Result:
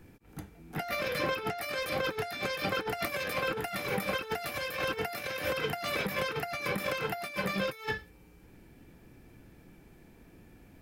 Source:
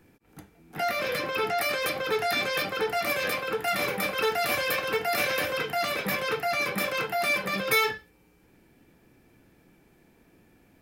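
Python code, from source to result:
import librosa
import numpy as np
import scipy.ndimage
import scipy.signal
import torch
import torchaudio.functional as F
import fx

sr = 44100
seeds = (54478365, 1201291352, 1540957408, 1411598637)

y = fx.over_compress(x, sr, threshold_db=-31.0, ratio=-0.5)
y = fx.low_shelf(y, sr, hz=130.0, db=9.5)
y = y * librosa.db_to_amplitude(-2.5)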